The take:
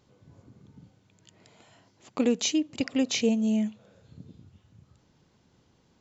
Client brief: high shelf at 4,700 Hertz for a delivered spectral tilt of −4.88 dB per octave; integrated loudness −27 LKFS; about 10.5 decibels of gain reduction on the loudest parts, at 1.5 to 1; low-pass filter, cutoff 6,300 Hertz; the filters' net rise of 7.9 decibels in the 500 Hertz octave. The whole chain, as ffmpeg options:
ffmpeg -i in.wav -af "lowpass=6300,equalizer=frequency=500:width_type=o:gain=8.5,highshelf=frequency=4700:gain=-5,acompressor=threshold=-44dB:ratio=1.5,volume=6.5dB" out.wav

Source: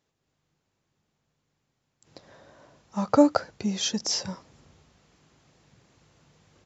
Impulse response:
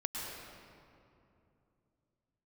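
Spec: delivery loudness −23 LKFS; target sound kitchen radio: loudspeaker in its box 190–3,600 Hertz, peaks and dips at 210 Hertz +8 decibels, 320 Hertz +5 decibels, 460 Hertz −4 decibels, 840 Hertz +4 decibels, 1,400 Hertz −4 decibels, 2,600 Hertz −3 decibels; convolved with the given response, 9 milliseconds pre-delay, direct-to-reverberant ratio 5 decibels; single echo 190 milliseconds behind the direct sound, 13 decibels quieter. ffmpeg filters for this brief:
-filter_complex "[0:a]aecho=1:1:190:0.224,asplit=2[link_01][link_02];[1:a]atrim=start_sample=2205,adelay=9[link_03];[link_02][link_03]afir=irnorm=-1:irlink=0,volume=-8dB[link_04];[link_01][link_04]amix=inputs=2:normalize=0,highpass=190,equalizer=frequency=210:width_type=q:width=4:gain=8,equalizer=frequency=320:width_type=q:width=4:gain=5,equalizer=frequency=460:width_type=q:width=4:gain=-4,equalizer=frequency=840:width_type=q:width=4:gain=4,equalizer=frequency=1400:width_type=q:width=4:gain=-4,equalizer=frequency=2600:width_type=q:width=4:gain=-3,lowpass=frequency=3600:width=0.5412,lowpass=frequency=3600:width=1.3066"

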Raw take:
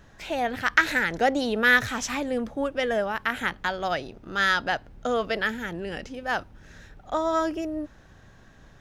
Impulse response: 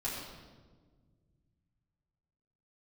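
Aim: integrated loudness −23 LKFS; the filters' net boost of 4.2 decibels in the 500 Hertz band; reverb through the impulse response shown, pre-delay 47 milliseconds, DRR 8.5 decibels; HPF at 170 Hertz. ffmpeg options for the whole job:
-filter_complex "[0:a]highpass=170,equalizer=frequency=500:width_type=o:gain=5,asplit=2[link_01][link_02];[1:a]atrim=start_sample=2205,adelay=47[link_03];[link_02][link_03]afir=irnorm=-1:irlink=0,volume=-12dB[link_04];[link_01][link_04]amix=inputs=2:normalize=0,volume=1dB"

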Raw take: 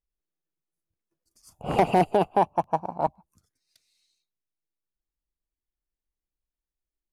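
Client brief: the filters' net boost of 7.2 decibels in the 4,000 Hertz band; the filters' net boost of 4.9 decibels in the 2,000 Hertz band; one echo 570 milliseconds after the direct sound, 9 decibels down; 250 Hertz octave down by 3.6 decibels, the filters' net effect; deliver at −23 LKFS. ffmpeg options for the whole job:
ffmpeg -i in.wav -af "equalizer=frequency=250:width_type=o:gain=-6.5,equalizer=frequency=2000:width_type=o:gain=3.5,equalizer=frequency=4000:width_type=o:gain=9,aecho=1:1:570:0.355,volume=2.5dB" out.wav

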